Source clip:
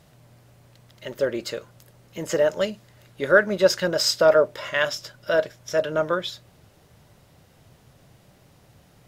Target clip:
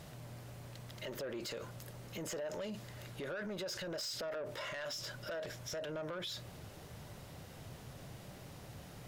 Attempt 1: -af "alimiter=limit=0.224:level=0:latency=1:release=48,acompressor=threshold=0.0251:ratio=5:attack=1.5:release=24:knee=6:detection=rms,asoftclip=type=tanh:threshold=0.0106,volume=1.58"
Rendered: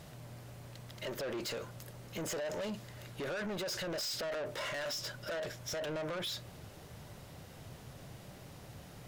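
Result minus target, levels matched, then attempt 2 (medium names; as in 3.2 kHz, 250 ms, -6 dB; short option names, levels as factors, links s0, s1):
compression: peak gain reduction -8.5 dB
-af "alimiter=limit=0.224:level=0:latency=1:release=48,acompressor=threshold=0.0075:ratio=5:attack=1.5:release=24:knee=6:detection=rms,asoftclip=type=tanh:threshold=0.0106,volume=1.58"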